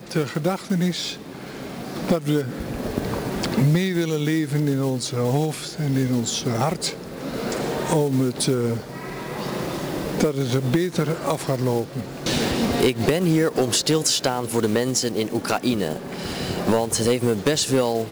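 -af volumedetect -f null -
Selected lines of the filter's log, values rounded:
mean_volume: -22.8 dB
max_volume: -11.1 dB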